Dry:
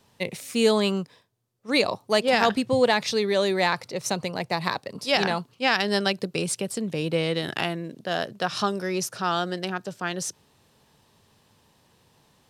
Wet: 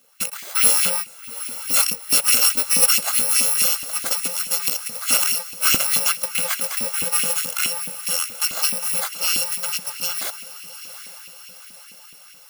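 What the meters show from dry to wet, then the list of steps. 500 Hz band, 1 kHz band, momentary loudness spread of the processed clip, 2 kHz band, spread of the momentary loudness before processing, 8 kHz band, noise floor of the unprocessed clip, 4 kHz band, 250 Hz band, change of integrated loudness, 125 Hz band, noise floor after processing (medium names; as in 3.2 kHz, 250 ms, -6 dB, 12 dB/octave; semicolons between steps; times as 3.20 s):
-12.0 dB, -4.5 dB, 14 LU, +0.5 dB, 10 LU, +17.5 dB, -63 dBFS, +5.0 dB, -12.0 dB, +7.0 dB, -11.0 dB, -45 dBFS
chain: bit-reversed sample order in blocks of 128 samples; echo that smears into a reverb 808 ms, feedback 56%, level -13.5 dB; LFO high-pass saw up 4.7 Hz 240–2700 Hz; trim +4 dB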